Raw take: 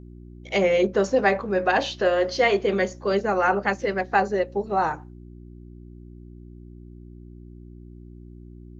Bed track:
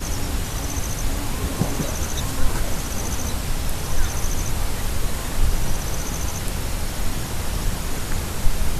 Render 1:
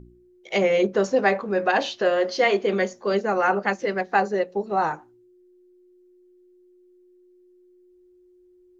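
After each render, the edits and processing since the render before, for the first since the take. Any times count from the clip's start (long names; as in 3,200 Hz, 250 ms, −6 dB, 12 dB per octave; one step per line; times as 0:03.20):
hum removal 60 Hz, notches 5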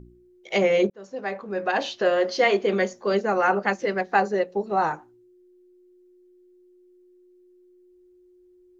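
0:00.90–0:02.10: fade in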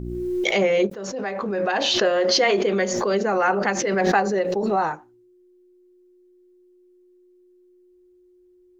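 background raised ahead of every attack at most 23 dB per second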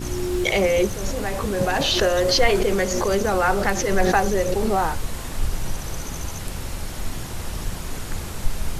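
mix in bed track −4.5 dB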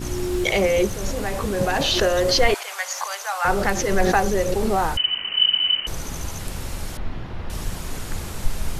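0:02.54–0:03.45: Butterworth high-pass 750 Hz
0:04.97–0:05.87: voice inversion scrambler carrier 3,000 Hz
0:06.97–0:07.50: high-frequency loss of the air 320 metres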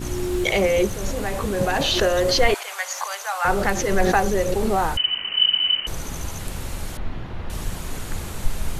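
parametric band 5,200 Hz −3.5 dB 0.3 octaves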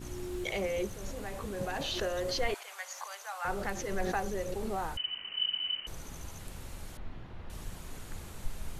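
level −14 dB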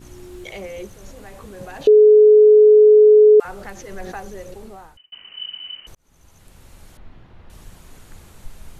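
0:01.87–0:03.40: beep over 425 Hz −6 dBFS
0:04.46–0:05.12: fade out
0:05.95–0:07.17: fade in equal-power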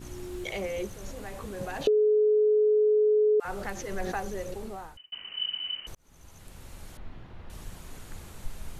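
brickwall limiter −12.5 dBFS, peak gain reduction 6.5 dB
downward compressor, threshold −21 dBFS, peak gain reduction 6.5 dB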